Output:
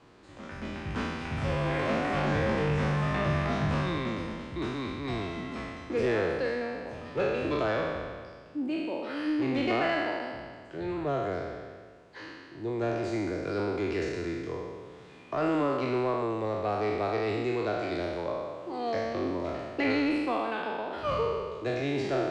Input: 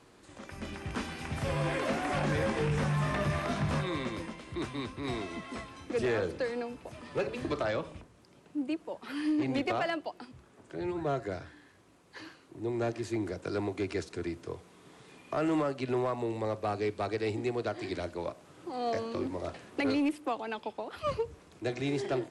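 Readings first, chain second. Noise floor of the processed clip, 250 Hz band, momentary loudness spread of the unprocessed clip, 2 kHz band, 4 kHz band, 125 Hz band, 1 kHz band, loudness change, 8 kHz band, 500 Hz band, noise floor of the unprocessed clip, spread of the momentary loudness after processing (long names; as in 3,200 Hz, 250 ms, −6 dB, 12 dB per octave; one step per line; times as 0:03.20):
−50 dBFS, +2.5 dB, 13 LU, +4.0 dB, +2.5 dB, +2.5 dB, +4.0 dB, +3.0 dB, can't be measured, +3.5 dB, −60 dBFS, 11 LU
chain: peak hold with a decay on every bin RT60 1.71 s
high-frequency loss of the air 100 metres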